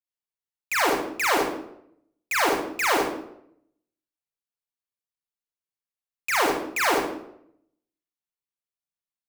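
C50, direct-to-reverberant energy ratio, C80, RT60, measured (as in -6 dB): 0.0 dB, -3.5 dB, 4.5 dB, 0.75 s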